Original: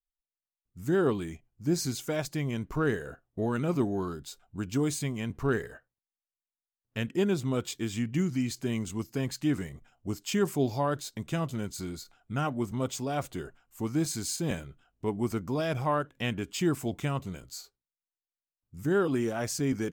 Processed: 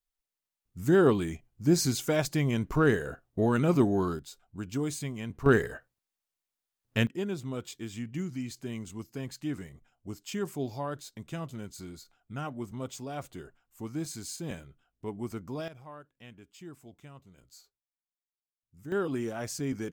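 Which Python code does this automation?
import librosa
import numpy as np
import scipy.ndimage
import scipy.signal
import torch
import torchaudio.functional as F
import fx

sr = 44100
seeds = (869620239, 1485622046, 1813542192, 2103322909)

y = fx.gain(x, sr, db=fx.steps((0.0, 4.0), (4.19, -3.5), (5.46, 6.0), (7.07, -6.5), (15.68, -19.0), (17.38, -12.5), (18.92, -4.0)))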